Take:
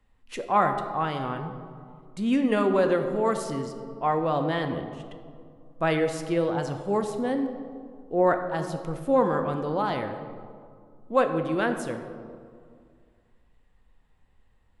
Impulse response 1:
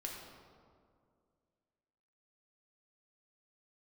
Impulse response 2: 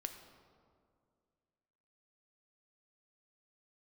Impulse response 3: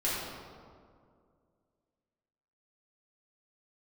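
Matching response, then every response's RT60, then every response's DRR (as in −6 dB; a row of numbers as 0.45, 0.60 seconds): 2; 2.2, 2.2, 2.2 seconds; −1.5, 6.0, −9.0 decibels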